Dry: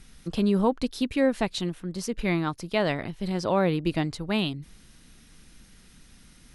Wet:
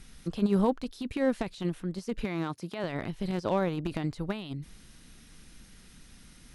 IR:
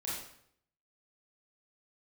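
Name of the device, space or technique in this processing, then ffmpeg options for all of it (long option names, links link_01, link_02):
de-esser from a sidechain: -filter_complex "[0:a]asplit=2[link_01][link_02];[link_02]highpass=4400,apad=whole_len=288551[link_03];[link_01][link_03]sidechaincompress=threshold=-51dB:ratio=4:attack=1.1:release=21,asettb=1/sr,asplit=3[link_04][link_05][link_06];[link_04]atrim=end=2.244[link_07];[link_05]atrim=start=2.24:end=2.84,asetpts=PTS-STARTPTS,afade=type=in:duration=0.004:curve=qsin,afade=type=out:start_time=0.596:duration=0.004:curve=qsin,highpass=130[link_08];[link_06]atrim=start=2.836[link_09];[link_07][link_08]acrossfade=duration=0.004:curve1=hsin:curve2=qsin[link_10];[link_10][link_09]acrossfade=duration=0.004:curve1=qsin:curve2=hsin"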